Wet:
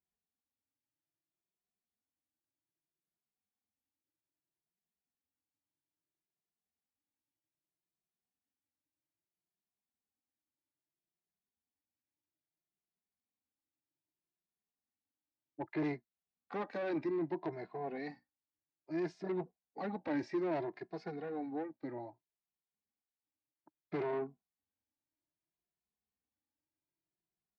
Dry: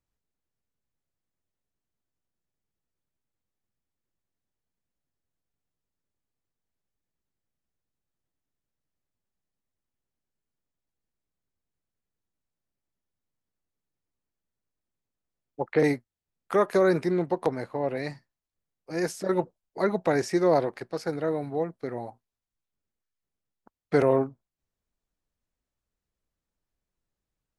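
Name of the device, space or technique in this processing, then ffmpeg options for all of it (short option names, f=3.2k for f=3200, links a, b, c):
barber-pole flanger into a guitar amplifier: -filter_complex "[0:a]asplit=2[a][b];[b]adelay=2.4,afreqshift=0.62[c];[a][c]amix=inputs=2:normalize=1,asoftclip=type=tanh:threshold=-27dB,highpass=98,equalizer=f=120:t=q:w=4:g=-4,equalizer=f=310:t=q:w=4:g=7,equalizer=f=500:t=q:w=4:g=-7,equalizer=f=780:t=q:w=4:g=4,equalizer=f=1.3k:t=q:w=4:g=-7,equalizer=f=3.1k:t=q:w=4:g=-7,lowpass=f=4.1k:w=0.5412,lowpass=f=4.1k:w=1.3066,volume=-5.5dB"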